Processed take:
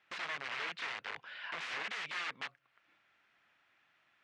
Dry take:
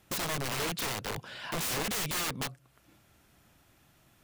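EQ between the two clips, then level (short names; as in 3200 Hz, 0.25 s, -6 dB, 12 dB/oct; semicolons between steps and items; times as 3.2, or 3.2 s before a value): band-pass 2000 Hz, Q 1.4; air absorption 110 m; +1.0 dB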